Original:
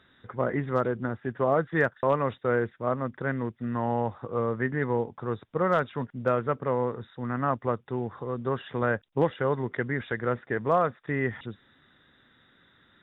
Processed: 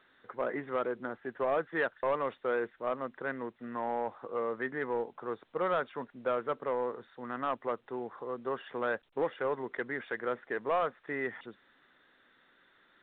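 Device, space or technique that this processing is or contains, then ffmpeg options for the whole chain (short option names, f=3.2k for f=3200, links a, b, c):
telephone: -af "highpass=350,lowpass=3.1k,asoftclip=type=tanh:threshold=-19dB,volume=-3dB" -ar 8000 -c:a pcm_alaw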